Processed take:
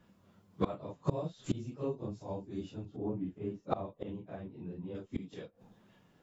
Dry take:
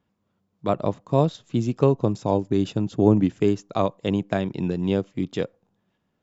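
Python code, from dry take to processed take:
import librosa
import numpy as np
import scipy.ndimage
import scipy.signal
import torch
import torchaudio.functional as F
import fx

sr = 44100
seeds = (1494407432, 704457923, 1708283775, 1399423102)

y = fx.phase_scramble(x, sr, seeds[0], window_ms=100)
y = fx.lowpass(y, sr, hz=1200.0, slope=6, at=(2.85, 4.95))
y = fx.gate_flip(y, sr, shuts_db=-26.0, range_db=-27)
y = y * 10.0 ** (8.5 / 20.0)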